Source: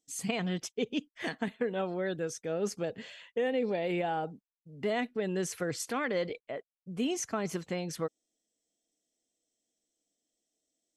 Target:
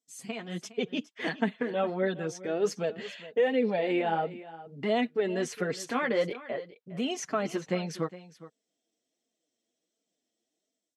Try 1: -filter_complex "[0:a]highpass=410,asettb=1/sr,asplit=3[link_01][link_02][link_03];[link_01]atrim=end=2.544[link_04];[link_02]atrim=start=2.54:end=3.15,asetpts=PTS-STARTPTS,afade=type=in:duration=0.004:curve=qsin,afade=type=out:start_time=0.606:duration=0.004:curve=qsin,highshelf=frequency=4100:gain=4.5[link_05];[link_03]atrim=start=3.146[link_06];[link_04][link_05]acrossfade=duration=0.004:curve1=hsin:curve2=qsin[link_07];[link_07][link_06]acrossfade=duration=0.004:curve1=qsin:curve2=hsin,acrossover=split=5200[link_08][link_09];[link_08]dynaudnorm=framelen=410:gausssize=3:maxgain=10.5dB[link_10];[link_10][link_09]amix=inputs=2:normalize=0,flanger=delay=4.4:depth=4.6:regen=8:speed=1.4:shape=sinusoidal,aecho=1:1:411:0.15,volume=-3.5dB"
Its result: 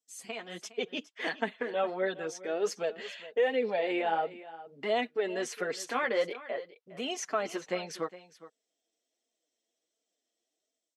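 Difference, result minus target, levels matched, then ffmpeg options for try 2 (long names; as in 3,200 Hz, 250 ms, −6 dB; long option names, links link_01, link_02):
125 Hz band −11.0 dB
-filter_complex "[0:a]highpass=140,asettb=1/sr,asplit=3[link_01][link_02][link_03];[link_01]atrim=end=2.544[link_04];[link_02]atrim=start=2.54:end=3.15,asetpts=PTS-STARTPTS,afade=type=in:duration=0.004:curve=qsin,afade=type=out:start_time=0.606:duration=0.004:curve=qsin,highshelf=frequency=4100:gain=4.5[link_05];[link_03]atrim=start=3.146[link_06];[link_04][link_05]acrossfade=duration=0.004:curve1=hsin:curve2=qsin[link_07];[link_07][link_06]acrossfade=duration=0.004:curve1=qsin:curve2=hsin,acrossover=split=5200[link_08][link_09];[link_08]dynaudnorm=framelen=410:gausssize=3:maxgain=10.5dB[link_10];[link_10][link_09]amix=inputs=2:normalize=0,flanger=delay=4.4:depth=4.6:regen=8:speed=1.4:shape=sinusoidal,aecho=1:1:411:0.15,volume=-3.5dB"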